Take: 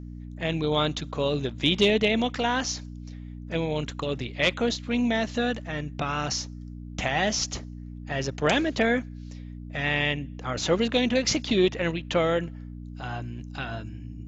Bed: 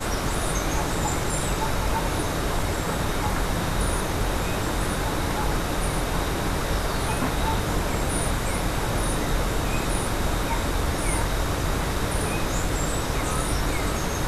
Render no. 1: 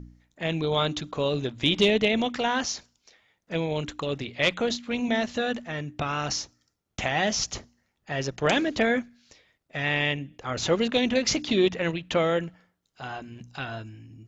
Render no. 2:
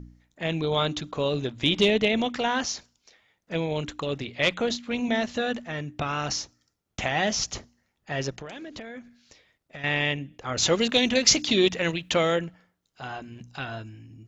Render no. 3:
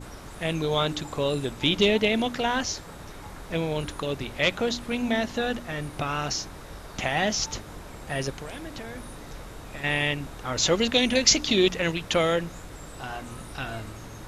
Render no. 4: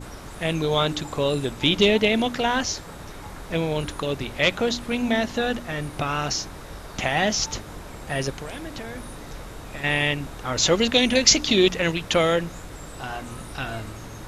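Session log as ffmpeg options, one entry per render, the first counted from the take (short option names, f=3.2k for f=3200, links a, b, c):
-af "bandreject=f=60:t=h:w=4,bandreject=f=120:t=h:w=4,bandreject=f=180:t=h:w=4,bandreject=f=240:t=h:w=4,bandreject=f=300:t=h:w=4"
-filter_complex "[0:a]asettb=1/sr,asplit=3[a][b][c];[a]atrim=end=8.364[d];[b]atrim=start=8.36:end=9.84,asetpts=PTS-STARTPTS,afade=t=in:d=0.004:c=qsin,afade=t=out:st=1.476:d=0.004:c=qsin,acompressor=threshold=-35dB:ratio=20:attack=3.2:release=140:knee=1:detection=peak[e];[c]atrim=start=9.836[f];[d][e]acrossfade=d=0.004:c1=hsin:c2=qsin[g];[g][f]acrossfade=d=0.004:c1=qsin:c2=hsin,asettb=1/sr,asplit=3[h][i][j];[h]atrim=end=10.584[k];[i]atrim=start=10.58:end=12.36,asetpts=PTS-STARTPTS,afade=t=in:d=0.004:c=qsin,afade=t=out:st=1.776:d=0.004:c=qsin,highshelf=f=3.4k:g=11[l];[j]atrim=start=12.356[m];[k][l]acrossfade=d=0.004:c1=hsin:c2=qsin[n];[n][m]acrossfade=d=0.004:c1=qsin:c2=hsin"
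-filter_complex "[1:a]volume=-16.5dB[a];[0:a][a]amix=inputs=2:normalize=0"
-af "volume=3dB"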